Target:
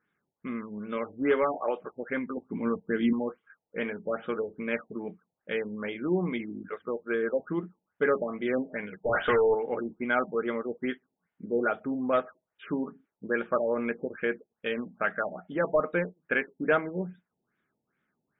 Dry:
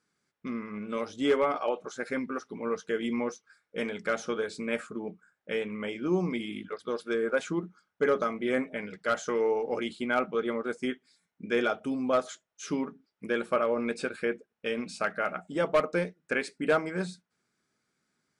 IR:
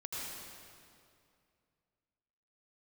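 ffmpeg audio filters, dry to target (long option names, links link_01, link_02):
-filter_complex "[0:a]asettb=1/sr,asplit=3[link_01][link_02][link_03];[link_01]atrim=end=2.374[link_04];[link_02]atrim=start=2.37:end=3.13,asetpts=PTS-STARTPTS,afade=type=in:duration=0.004:curve=qsin,afade=type=out:start_time=0.756:duration=0.004:curve=qsin,lowshelf=frequency=350:width_type=q:width=1.5:gain=6.5[link_05];[link_03]atrim=start=3.126[link_06];[link_04][link_05]acrossfade=duration=0.004:curve1=hsin:curve2=qsin[link_07];[link_07][link_06]acrossfade=duration=0.004:curve1=qsin:curve2=hsin,asplit=3[link_08][link_09][link_10];[link_08]afade=type=out:start_time=9.02:duration=0.02[link_11];[link_09]asplit=2[link_12][link_13];[link_13]highpass=frequency=720:poles=1,volume=27dB,asoftclip=type=tanh:threshold=-16.5dB[link_14];[link_12][link_14]amix=inputs=2:normalize=0,lowpass=frequency=2600:poles=1,volume=-6dB,afade=type=in:start_time=9.02:duration=0.02,afade=type=out:start_time=9.53:duration=0.02[link_15];[link_10]afade=type=in:start_time=9.53:duration=0.02[link_16];[link_11][link_15][link_16]amix=inputs=3:normalize=0,equalizer=frequency=1700:width_type=o:width=0.42:gain=4.5,afftfilt=real='re*lt(b*sr/1024,900*pow(3800/900,0.5+0.5*sin(2*PI*2.4*pts/sr)))':imag='im*lt(b*sr/1024,900*pow(3800/900,0.5+0.5*sin(2*PI*2.4*pts/sr)))':win_size=1024:overlap=0.75"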